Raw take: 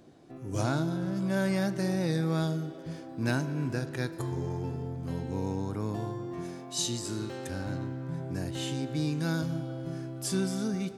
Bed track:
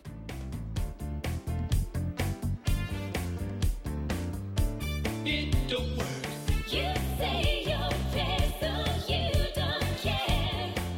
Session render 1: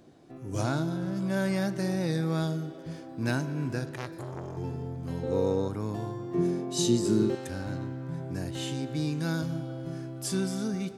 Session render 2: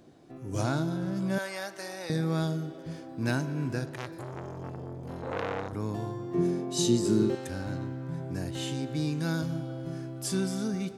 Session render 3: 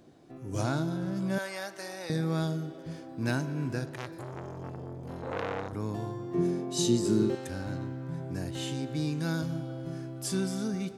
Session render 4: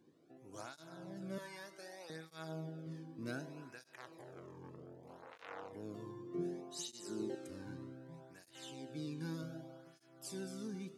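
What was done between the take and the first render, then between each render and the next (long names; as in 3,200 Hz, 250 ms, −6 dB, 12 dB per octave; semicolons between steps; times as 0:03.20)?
0:03.91–0:04.57: saturating transformer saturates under 1,400 Hz; 0:05.23–0:05.68: hollow resonant body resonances 510/1,200/3,700 Hz, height 14 dB, ringing for 20 ms; 0:06.34–0:07.35: hollow resonant body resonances 200/370 Hz, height 14 dB, ringing for 30 ms
0:01.38–0:02.10: high-pass filter 670 Hz; 0:03.86–0:05.73: saturating transformer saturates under 1,900 Hz
level −1 dB
tuned comb filter 160 Hz, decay 1.5 s, mix 70%; through-zero flanger with one copy inverted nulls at 0.65 Hz, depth 1.6 ms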